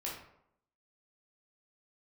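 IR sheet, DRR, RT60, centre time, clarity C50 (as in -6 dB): -5.0 dB, 0.75 s, 41 ms, 4.0 dB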